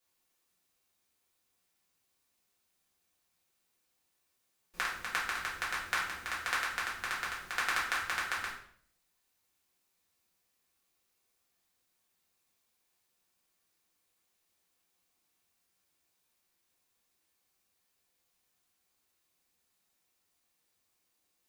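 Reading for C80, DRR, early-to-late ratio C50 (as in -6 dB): 8.5 dB, -7.5 dB, 5.0 dB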